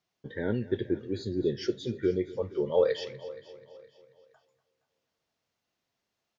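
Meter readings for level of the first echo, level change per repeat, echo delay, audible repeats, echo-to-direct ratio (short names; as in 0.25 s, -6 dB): -18.0 dB, no steady repeat, 0.242 s, 5, -14.5 dB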